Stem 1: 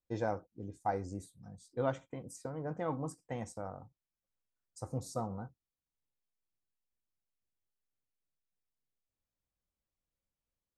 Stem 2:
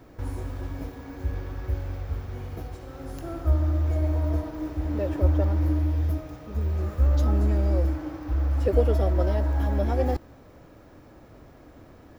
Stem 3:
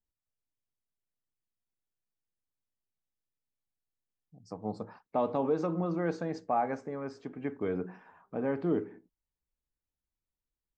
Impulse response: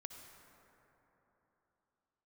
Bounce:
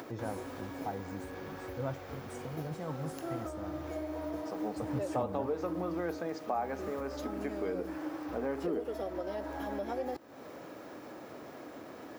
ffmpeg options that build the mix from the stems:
-filter_complex "[0:a]equalizer=f=150:w=1.5:g=8.5,volume=-6dB[a];[1:a]alimiter=limit=-19.5dB:level=0:latency=1:release=318,volume=-1dB[b];[2:a]acrusher=bits=10:mix=0:aa=0.000001,volume=2.5dB[c];[b][c]amix=inputs=2:normalize=0,highpass=270,acompressor=threshold=-33dB:ratio=2.5,volume=0dB[d];[a][d]amix=inputs=2:normalize=0,acompressor=mode=upward:threshold=-38dB:ratio=2.5"

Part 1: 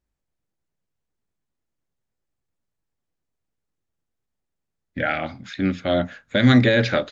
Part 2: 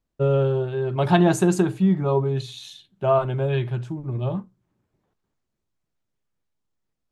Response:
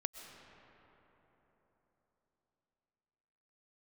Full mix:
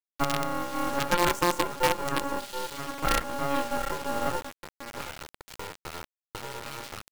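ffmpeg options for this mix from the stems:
-filter_complex "[0:a]acompressor=threshold=-20dB:ratio=6,acrossover=split=110|4300[a][b][c];[a]acompressor=threshold=-41dB:ratio=4[d];[b]acompressor=threshold=-33dB:ratio=4[e];[c]acompressor=threshold=-48dB:ratio=4[f];[d][e][f]amix=inputs=3:normalize=0,volume=-1dB[g];[1:a]volume=2.5dB,asplit=2[h][i];[i]volume=-12dB,aecho=0:1:725:1[j];[g][h][j]amix=inputs=3:normalize=0,aeval=exprs='val(0)*sin(2*PI*700*n/s)':c=same,acrusher=bits=3:dc=4:mix=0:aa=0.000001,alimiter=limit=-11.5dB:level=0:latency=1:release=455"

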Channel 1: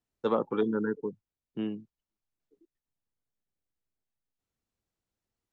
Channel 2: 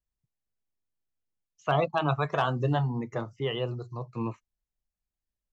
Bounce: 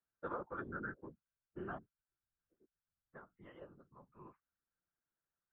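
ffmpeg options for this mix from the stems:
-filter_complex "[0:a]acompressor=threshold=-35dB:ratio=2,volume=-1.5dB[a];[1:a]volume=-16dB,asplit=3[b][c][d];[b]atrim=end=1.78,asetpts=PTS-STARTPTS,afade=t=out:st=1.776:d=0.004:c=hsin[e];[c]atrim=start=1.78:end=3.14,asetpts=PTS-STARTPTS,volume=0[f];[d]atrim=start=3.14,asetpts=PTS-STARTPTS,afade=t=in:d=0.004:c=hsin[g];[e][f][g]concat=n=3:v=0:a=1[h];[a][h]amix=inputs=2:normalize=0,afftfilt=real='hypot(re,im)*cos(PI*b)':imag='0':win_size=1024:overlap=0.75,lowpass=f=1.5k:t=q:w=5.8,afftfilt=real='hypot(re,im)*cos(2*PI*random(0))':imag='hypot(re,im)*sin(2*PI*random(1))':win_size=512:overlap=0.75"

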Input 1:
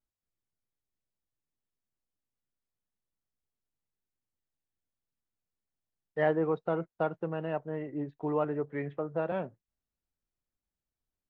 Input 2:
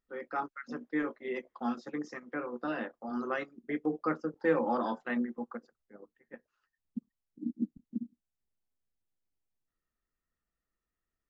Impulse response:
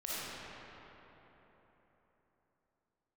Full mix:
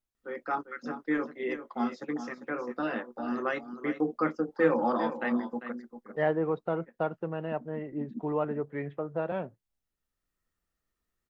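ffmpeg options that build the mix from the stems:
-filter_complex "[0:a]volume=0dB,asplit=2[a][b];[1:a]adelay=150,volume=3dB,asplit=2[c][d];[d]volume=-11dB[e];[b]apad=whole_len=504730[f];[c][f]sidechaincompress=threshold=-48dB:ratio=8:attack=16:release=651[g];[e]aecho=0:1:397:1[h];[a][g][h]amix=inputs=3:normalize=0"

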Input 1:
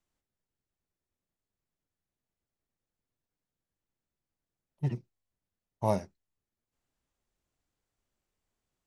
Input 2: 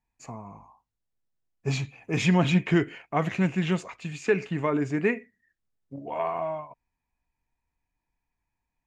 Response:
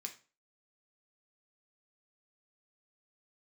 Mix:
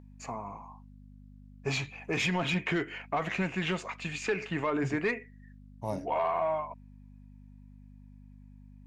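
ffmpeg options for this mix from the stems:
-filter_complex "[0:a]volume=-7dB[a];[1:a]aeval=exprs='val(0)+0.00631*(sin(2*PI*50*n/s)+sin(2*PI*2*50*n/s)/2+sin(2*PI*3*50*n/s)/3+sin(2*PI*4*50*n/s)/4+sin(2*PI*5*50*n/s)/5)':c=same,asplit=2[b][c];[c]highpass=f=720:p=1,volume=14dB,asoftclip=type=tanh:threshold=-10dB[d];[b][d]amix=inputs=2:normalize=0,lowpass=f=3.9k:p=1,volume=-6dB,alimiter=limit=-18dB:level=0:latency=1:release=301,volume=-2.5dB[e];[a][e]amix=inputs=2:normalize=0"

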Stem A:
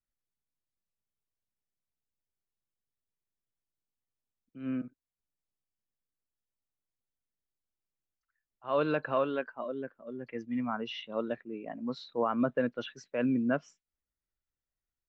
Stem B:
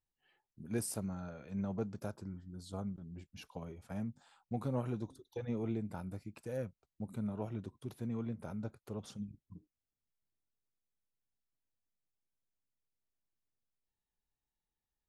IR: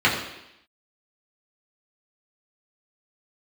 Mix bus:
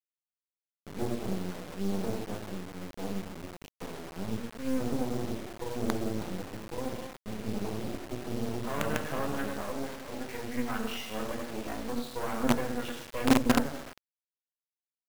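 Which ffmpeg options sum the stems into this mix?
-filter_complex "[0:a]bandreject=f=50:t=h:w=6,bandreject=f=100:t=h:w=6,bandreject=f=150:t=h:w=6,bandreject=f=200:t=h:w=6,bandreject=f=250:t=h:w=6,bandreject=f=300:t=h:w=6,bandreject=f=350:t=h:w=6,bandreject=f=400:t=h:w=6,volume=-3.5dB,asplit=2[a][b];[b]volume=-8dB[c];[1:a]bandpass=f=350:t=q:w=1.4:csg=0,adelay=250,volume=-0.5dB,asplit=2[d][e];[e]volume=-4dB[f];[2:a]atrim=start_sample=2205[g];[c][f]amix=inputs=2:normalize=0[h];[h][g]afir=irnorm=-1:irlink=0[i];[a][d][i]amix=inputs=3:normalize=0,acrossover=split=260[j][k];[k]acompressor=threshold=-31dB:ratio=3[l];[j][l]amix=inputs=2:normalize=0,acrusher=bits=4:dc=4:mix=0:aa=0.000001"

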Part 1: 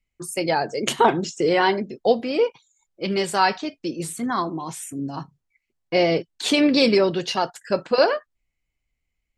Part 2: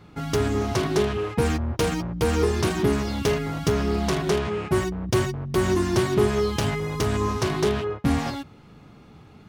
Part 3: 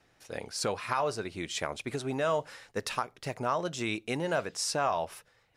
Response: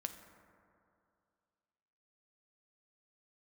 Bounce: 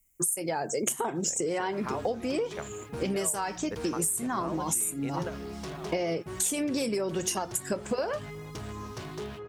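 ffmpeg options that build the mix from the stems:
-filter_complex "[0:a]aexciter=amount=15.7:drive=8.4:freq=6.6k,volume=2.5dB,asplit=2[a][b];[1:a]acrossover=split=8600[c][d];[d]acompressor=threshold=-56dB:ratio=4:attack=1:release=60[e];[c][e]amix=inputs=2:normalize=0,flanger=delay=5.7:depth=1.2:regen=-68:speed=1.4:shape=triangular,asoftclip=type=tanh:threshold=-21dB,adelay=1550,volume=-9dB[f];[2:a]adelay=950,volume=-1.5dB[g];[b]apad=whole_len=287259[h];[g][h]sidechaingate=range=-16dB:threshold=-35dB:ratio=16:detection=peak[i];[a][i]amix=inputs=2:normalize=0,lowpass=f=2.1k:p=1,acompressor=threshold=-19dB:ratio=2.5,volume=0dB[j];[f][j]amix=inputs=2:normalize=0,highshelf=f=8.9k:g=10,acompressor=threshold=-27dB:ratio=6"

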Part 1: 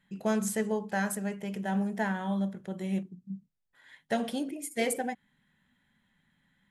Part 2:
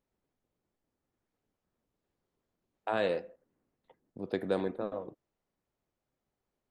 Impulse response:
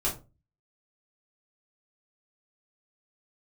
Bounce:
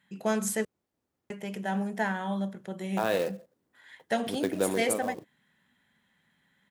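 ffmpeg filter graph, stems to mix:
-filter_complex "[0:a]lowshelf=f=270:g=-7,volume=3dB,asplit=3[a][b][c];[a]atrim=end=0.65,asetpts=PTS-STARTPTS,afade=t=out:st=0.646:d=0.004:c=hsin[d];[b]atrim=start=0.65:end=1.3,asetpts=PTS-STARTPTS,volume=0[e];[c]atrim=start=1.3,asetpts=PTS-STARTPTS,afade=t=in:d=0.004:c=hsin[f];[d][e][f]concat=n=3:v=0:a=1[g];[1:a]acrusher=bits=4:mode=log:mix=0:aa=0.000001,adelay=100,volume=2.5dB[h];[g][h]amix=inputs=2:normalize=0,highpass=60"

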